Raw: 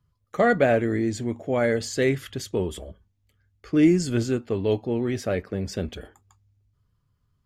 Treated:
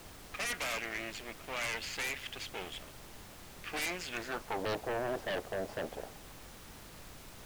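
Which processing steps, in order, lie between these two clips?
spectral gain 3.66–3.89, 440–2100 Hz +12 dB; half-wave rectifier; band-pass sweep 2600 Hz -> 670 Hz, 4.1–4.65; in parallel at -7 dB: sine folder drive 16 dB, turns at -20 dBFS; on the sum: added noise pink -45 dBFS; gain -6 dB

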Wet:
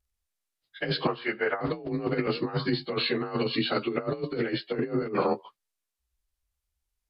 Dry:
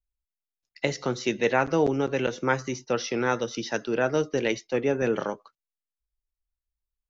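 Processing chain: inharmonic rescaling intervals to 90%; 1.07–1.61 three-band isolator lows -18 dB, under 560 Hz, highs -22 dB, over 2200 Hz; negative-ratio compressor -31 dBFS, ratio -0.5; gain +4 dB

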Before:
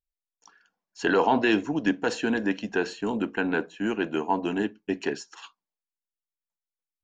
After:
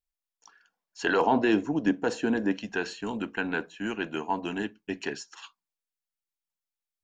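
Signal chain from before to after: bell 190 Hz -6 dB 2.6 oct, from 1.21 s 3100 Hz, from 2.58 s 390 Hz

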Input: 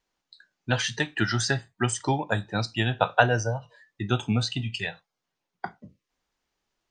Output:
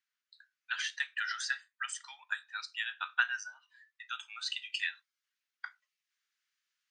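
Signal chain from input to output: steep high-pass 1400 Hz 36 dB/oct; high shelf 2100 Hz -11 dB, from 4.46 s -3.5 dB

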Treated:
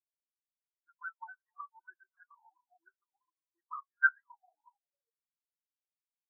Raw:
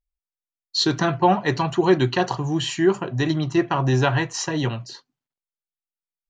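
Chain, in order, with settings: split-band echo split 560 Hz, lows 0.136 s, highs 0.26 s, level -8 dB; auto-wah 380–1500 Hz, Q 12, up, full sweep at -15 dBFS; spectral expander 4:1; gain +7 dB

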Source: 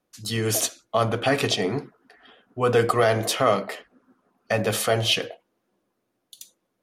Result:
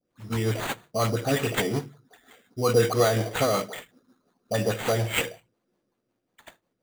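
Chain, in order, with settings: high shelf 6400 Hz -7.5 dB; dispersion highs, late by 73 ms, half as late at 1800 Hz; rotary speaker horn 5.5 Hz; sample-rate reducer 5300 Hz, jitter 0%; on a send: reverb RT60 0.30 s, pre-delay 3 ms, DRR 22.5 dB

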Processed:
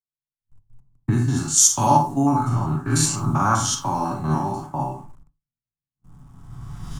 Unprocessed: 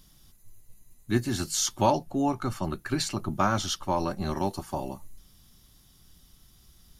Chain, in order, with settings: stepped spectrum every 0.1 s; recorder AGC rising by 12 dB/s; comb 7.1 ms, depth 34%; gate -39 dBFS, range -36 dB; tone controls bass -8 dB, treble +1 dB; on a send at -3 dB: reverb, pre-delay 31 ms; on the sum: low-pass opened by the level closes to 670 Hz, open at -23.5 dBFS; in parallel at -8 dB: bit-crush 8-bit; on the sum: graphic EQ 125/250/500/1000/2000/4000/8000 Hz +12/+3/-11/+7/-6/-8/+11 dB; three-band expander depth 40%; gain +2 dB

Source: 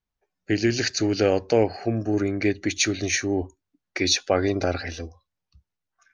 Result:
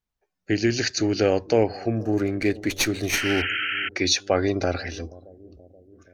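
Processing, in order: 3.13–3.89 painted sound noise 1300–3200 Hz -27 dBFS; analogue delay 0.478 s, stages 2048, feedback 59%, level -20.5 dB; 2–3.42 running maximum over 3 samples

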